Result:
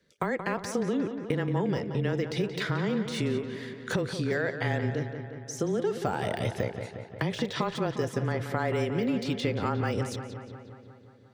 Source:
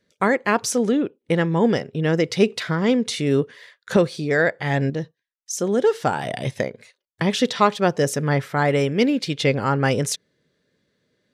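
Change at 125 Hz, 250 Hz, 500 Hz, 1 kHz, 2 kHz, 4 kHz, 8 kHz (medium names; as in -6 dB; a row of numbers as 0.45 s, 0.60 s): -6.0 dB, -8.5 dB, -9.5 dB, -10.0 dB, -9.0 dB, -9.5 dB, -13.0 dB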